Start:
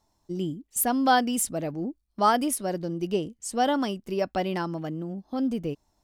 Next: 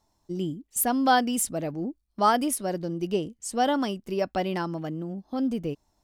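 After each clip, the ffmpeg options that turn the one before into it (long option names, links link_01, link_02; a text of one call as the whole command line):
ffmpeg -i in.wav -af anull out.wav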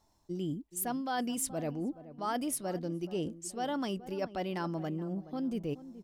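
ffmpeg -i in.wav -filter_complex "[0:a]areverse,acompressor=threshold=-32dB:ratio=6,areverse,asplit=2[link_01][link_02];[link_02]adelay=425,lowpass=frequency=950:poles=1,volume=-14dB,asplit=2[link_03][link_04];[link_04]adelay=425,lowpass=frequency=950:poles=1,volume=0.37,asplit=2[link_05][link_06];[link_06]adelay=425,lowpass=frequency=950:poles=1,volume=0.37,asplit=2[link_07][link_08];[link_08]adelay=425,lowpass=frequency=950:poles=1,volume=0.37[link_09];[link_01][link_03][link_05][link_07][link_09]amix=inputs=5:normalize=0" out.wav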